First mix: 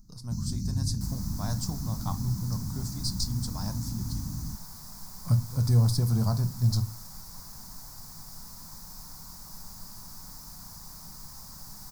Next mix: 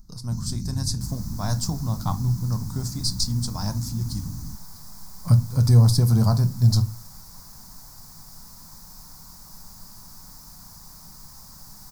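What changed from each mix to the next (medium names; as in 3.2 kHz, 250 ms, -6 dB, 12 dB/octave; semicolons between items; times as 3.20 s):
speech +7.0 dB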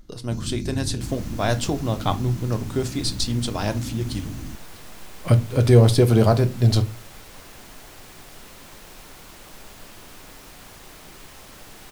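master: remove FFT filter 110 Hz 0 dB, 180 Hz +3 dB, 370 Hz -18 dB, 610 Hz -14 dB, 950 Hz -2 dB, 3 kHz -24 dB, 4.9 kHz +4 dB, 9.3 kHz -1 dB, 13 kHz +4 dB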